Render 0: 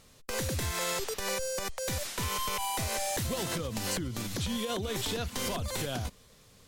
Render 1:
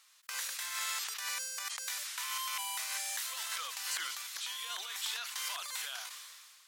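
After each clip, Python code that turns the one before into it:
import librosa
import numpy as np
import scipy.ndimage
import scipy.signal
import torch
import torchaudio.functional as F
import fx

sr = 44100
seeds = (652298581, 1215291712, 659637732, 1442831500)

y = scipy.signal.sosfilt(scipy.signal.butter(4, 1100.0, 'highpass', fs=sr, output='sos'), x)
y = fx.sustainer(y, sr, db_per_s=30.0)
y = y * 10.0 ** (-2.5 / 20.0)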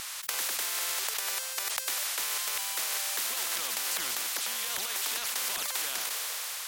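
y = fx.low_shelf(x, sr, hz=190.0, db=11.0)
y = fx.spectral_comp(y, sr, ratio=4.0)
y = y * 10.0 ** (6.0 / 20.0)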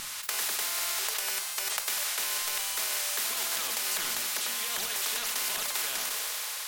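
y = fx.room_shoebox(x, sr, seeds[0], volume_m3=740.0, walls='furnished', distance_m=1.4)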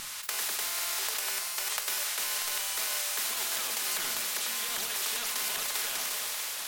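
y = x + 10.0 ** (-8.0 / 20.0) * np.pad(x, (int(638 * sr / 1000.0), 0))[:len(x)]
y = y * 10.0 ** (-1.5 / 20.0)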